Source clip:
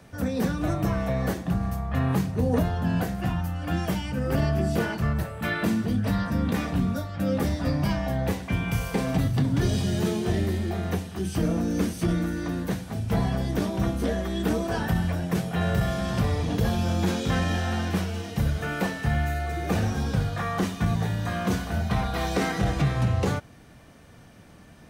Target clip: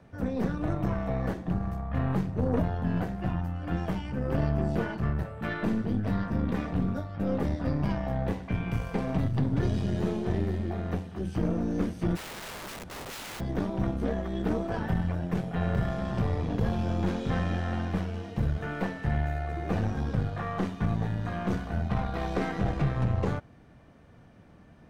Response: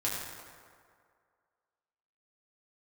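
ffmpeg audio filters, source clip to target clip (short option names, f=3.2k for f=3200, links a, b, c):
-filter_complex "[0:a]lowpass=f=1.5k:p=1,asplit=3[a][b][c];[a]afade=t=out:st=12.15:d=0.02[d];[b]aeval=exprs='(mod(39.8*val(0)+1,2)-1)/39.8':c=same,afade=t=in:st=12.15:d=0.02,afade=t=out:st=13.39:d=0.02[e];[c]afade=t=in:st=13.39:d=0.02[f];[d][e][f]amix=inputs=3:normalize=0,aeval=exprs='0.188*(cos(1*acos(clip(val(0)/0.188,-1,1)))-cos(1*PI/2))+0.0237*(cos(4*acos(clip(val(0)/0.188,-1,1)))-cos(4*PI/2))':c=same,volume=-3.5dB"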